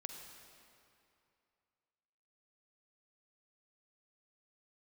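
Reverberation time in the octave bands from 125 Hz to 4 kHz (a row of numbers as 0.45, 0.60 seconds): 2.6, 2.5, 2.6, 2.7, 2.4, 2.0 seconds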